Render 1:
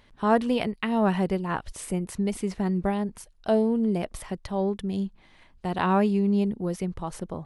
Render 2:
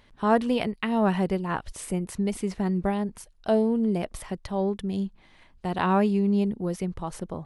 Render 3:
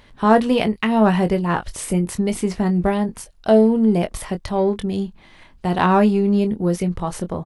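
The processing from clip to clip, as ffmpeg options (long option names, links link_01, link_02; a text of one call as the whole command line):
ffmpeg -i in.wav -af anull out.wav
ffmpeg -i in.wav -filter_complex "[0:a]asplit=2[link_01][link_02];[link_02]asoftclip=type=tanh:threshold=-26dB,volume=-10.5dB[link_03];[link_01][link_03]amix=inputs=2:normalize=0,asplit=2[link_04][link_05];[link_05]adelay=23,volume=-9dB[link_06];[link_04][link_06]amix=inputs=2:normalize=0,volume=6dB" out.wav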